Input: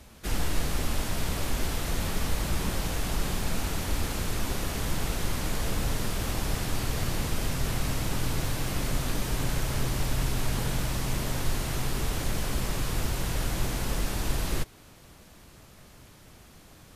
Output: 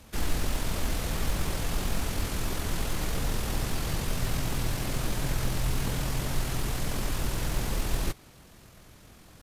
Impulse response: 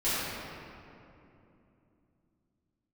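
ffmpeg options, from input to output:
-af "atempo=1.8,acrusher=bits=8:mode=log:mix=0:aa=0.000001"

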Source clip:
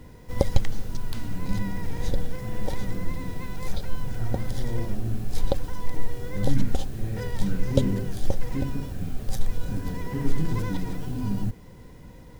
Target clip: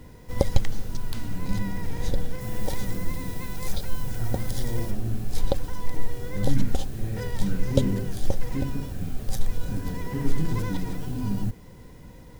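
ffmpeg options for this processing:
-af "asetnsamples=n=441:p=0,asendcmd='2.41 highshelf g 10;4.91 highshelf g 3',highshelf=f=5400:g=2.5"

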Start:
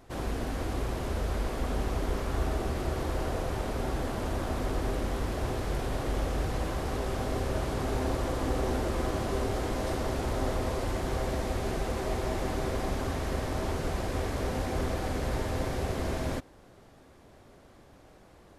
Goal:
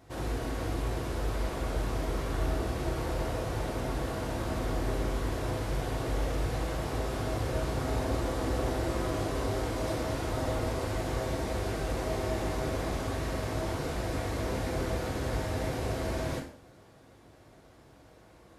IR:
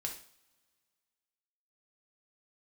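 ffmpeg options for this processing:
-filter_complex "[0:a]highpass=50[s0];[1:a]atrim=start_sample=2205[s1];[s0][s1]afir=irnorm=-1:irlink=0"

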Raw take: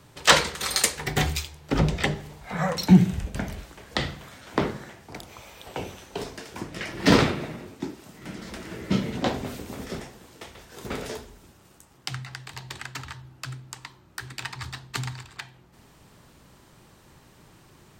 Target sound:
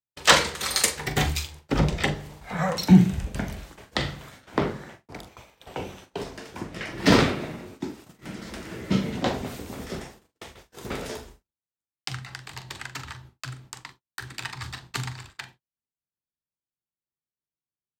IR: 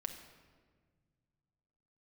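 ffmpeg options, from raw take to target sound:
-filter_complex "[0:a]asettb=1/sr,asplit=3[s0][s1][s2];[s0]atrim=end=4.414[s3];[s1]atrim=start=4.41:end=6.98,asetpts=PTS-STARTPTS,afade=t=in:d=0.004:c=qsin,afade=t=out:st=2.566:d=0.004:c=qsin,highshelf=f=4100:g=-5[s4];[s2]atrim=start=6.976[s5];[s3][s4]acrossfade=d=0.004:c1=hsin:c2=qsin[s6];[s6][s5]acrossfade=d=0.004:c1=qsin:c2=hsin,agate=range=0.00282:threshold=0.00562:ratio=16:detection=peak,asplit=2[s7][s8];[s8]adelay=42,volume=0.282[s9];[s7][s9]amix=inputs=2:normalize=0"

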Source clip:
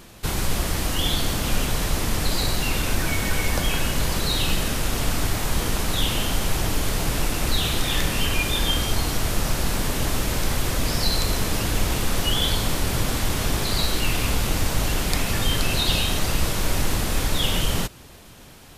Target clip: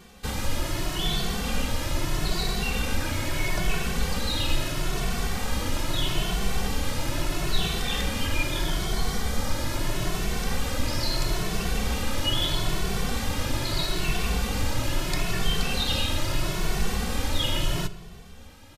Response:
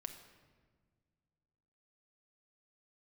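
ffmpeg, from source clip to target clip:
-filter_complex "[0:a]asettb=1/sr,asplit=3[s0][s1][s2];[s0]atrim=end=8.094[s3];[s1]atrim=start=8.09:end=9.76,asetpts=PTS-STARTPTS,afade=t=in:d=0.004:c=qsin,afade=t=out:st=1.666:d=0.004:c=qsin,bandreject=f=2700:w=9.5[s4];[s2]atrim=start=9.756[s5];[s3][s4]acrossfade=d=0.004:c1=hsin:c2=qsin[s6];[s6][s5]acrossfade=d=0.004:c1=qsin:c2=hsin,asplit=2[s7][s8];[1:a]atrim=start_sample=2205,lowpass=8200[s9];[s8][s9]afir=irnorm=-1:irlink=0,volume=1.06[s10];[s7][s10]amix=inputs=2:normalize=0,asplit=2[s11][s12];[s12]adelay=2.2,afreqshift=0.77[s13];[s11][s13]amix=inputs=2:normalize=1,volume=0.562"

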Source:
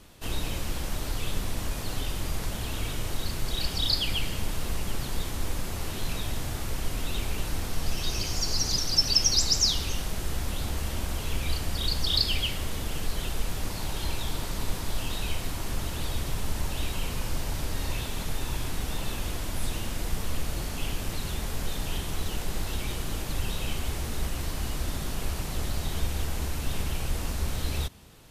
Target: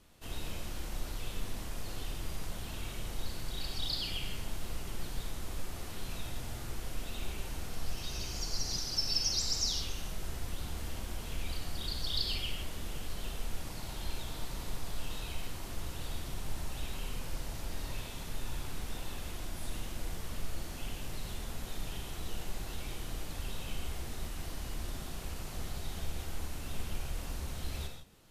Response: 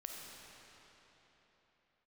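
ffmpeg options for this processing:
-filter_complex "[1:a]atrim=start_sample=2205,afade=t=out:st=0.23:d=0.01,atrim=end_sample=10584,asetrate=48510,aresample=44100[s0];[0:a][s0]afir=irnorm=-1:irlink=0,volume=0.631"

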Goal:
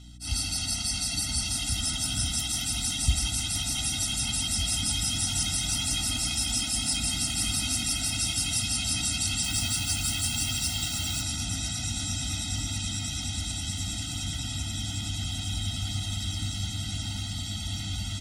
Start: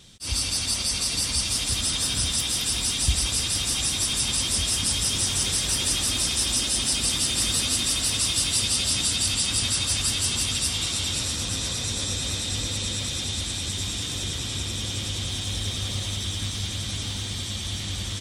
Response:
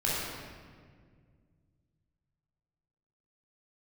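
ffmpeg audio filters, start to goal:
-filter_complex "[0:a]aeval=exprs='val(0)+0.00562*(sin(2*PI*60*n/s)+sin(2*PI*2*60*n/s)/2+sin(2*PI*3*60*n/s)/3+sin(2*PI*4*60*n/s)/4+sin(2*PI*5*60*n/s)/5)':c=same,asplit=3[s0][s1][s2];[s0]afade=t=out:st=9.42:d=0.02[s3];[s1]acrusher=bits=4:mix=0:aa=0.5,afade=t=in:st=9.42:d=0.02,afade=t=out:st=11.21:d=0.02[s4];[s2]afade=t=in:st=11.21:d=0.02[s5];[s3][s4][s5]amix=inputs=3:normalize=0,afftfilt=real='re*eq(mod(floor(b*sr/1024/310),2),0)':imag='im*eq(mod(floor(b*sr/1024/310),2),0)':win_size=1024:overlap=0.75,volume=0.891"

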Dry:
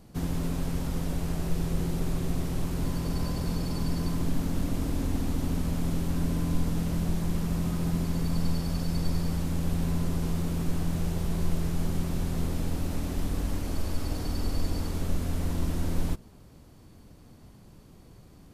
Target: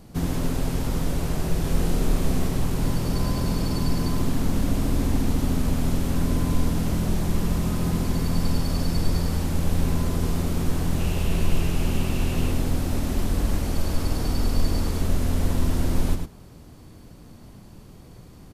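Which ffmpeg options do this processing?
-filter_complex "[0:a]asettb=1/sr,asplit=3[s0][s1][s2];[s0]atrim=end=1.624[s3];[s1]atrim=start=1.62:end=2.47,asetpts=PTS-STARTPTS,afade=t=in:d=0.004:c=qsin,afade=t=out:st=0.846:d=0.004:c=qsin,asplit=2[s4][s5];[s5]adelay=28,volume=0.631[s6];[s4][s6]amix=inputs=2:normalize=0,atrim=end_sample=37485[s7];[s2]atrim=start=2.466[s8];[s3][s7]acrossfade=d=0.004:c1=hsin:c2=qsin[s9];[s9][s8]acrossfade=d=0.004:c1=qsin:c2=hsin,asettb=1/sr,asplit=3[s10][s11][s12];[s10]atrim=end=10.994[s13];[s11]atrim=start=10.99:end=12.52,asetpts=PTS-STARTPTS,afade=t=in:d=0.004:c=qsin,afade=t=out:st=1.526:d=0.004:c=qsin,equalizer=f=2700:w=4.3:g=11[s14];[s12]atrim=start=12.516[s15];[s13][s14]acrossfade=d=0.004:c1=hsin:c2=qsin[s16];[s16][s15]acrossfade=d=0.004:c1=qsin:c2=hsin,aecho=1:1:104:0.473,volume=1.88"

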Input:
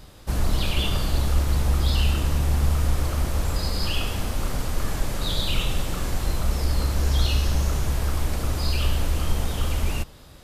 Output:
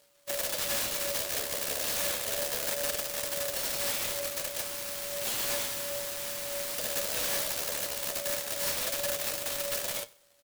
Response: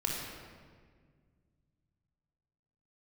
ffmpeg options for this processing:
-filter_complex "[0:a]asettb=1/sr,asplit=3[s0][s1][s2];[s0]atrim=end=4.654[s3];[s1]atrim=start=4.65:end=6.78,asetpts=PTS-STARTPTS,afade=t=in:d=0.004:c=qsin,afade=t=out:st=2.126:d=0.004:c=qsin,highpass=f=640:w=0.5412,highpass=f=640:w=1.3066[s4];[s2]atrim=start=6.776[s5];[s3][s4]acrossfade=d=0.004:c1=hsin:c2=qsin[s6];[s6][s5]acrossfade=d=0.004:c1=qsin:c2=hsin,aexciter=amount=2.7:drive=9.9:freq=2100,aeval=exprs='0.708*(cos(1*acos(clip(val(0)/0.708,-1,1)))-cos(1*PI/2))+0.224*(cos(2*acos(clip(val(0)/0.708,-1,1)))-cos(2*PI/2))+0.1*(cos(6*acos(clip(val(0)/0.708,-1,1)))-cos(6*PI/2))+0.1*(cos(7*acos(clip(val(0)/0.708,-1,1)))-cos(7*PI/2))':c=same,aeval=exprs='val(0)*sin(2*PI*570*n/s)':c=same,asoftclip=type=tanh:threshold=0.447,flanger=delay=6.5:depth=5.1:regen=57:speed=0.32:shape=sinusoidal,aeval=exprs='(mod(15.8*val(0)+1,2)-1)/15.8':c=same,aecho=1:1:96|192:0.0794|0.027"

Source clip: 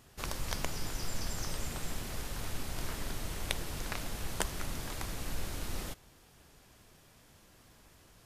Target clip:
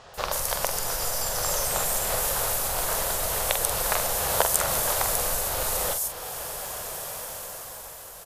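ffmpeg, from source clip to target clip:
-filter_complex "[0:a]dynaudnorm=f=270:g=9:m=3.16,asettb=1/sr,asplit=3[s0][s1][s2];[s0]atrim=end=4.194[s3];[s1]atrim=start=4.19:end=4.77,asetpts=PTS-STARTPTS,afade=t=in:d=0.004:c=qsin,afade=t=out:st=0.576:d=0.004:c=qsin,highpass=41[s4];[s2]atrim=start=4.766[s5];[s3][s4]acrossfade=d=0.004:c1=hsin:c2=qsin[s6];[s6][s5]acrossfade=d=0.004:c1=qsin:c2=hsin,acompressor=threshold=0.0112:ratio=3,asplit=2[s7][s8];[s8]adelay=45,volume=0.447[s9];[s7][s9]amix=inputs=2:normalize=0,acrossover=split=5200[s10][s11];[s11]adelay=140[s12];[s10][s12]amix=inputs=2:normalize=0,crystalizer=i=6.5:c=0,firequalizer=gain_entry='entry(160,0);entry(280,-6);entry(510,15);entry(2200,-1)':delay=0.05:min_phase=1,volume=1.58"

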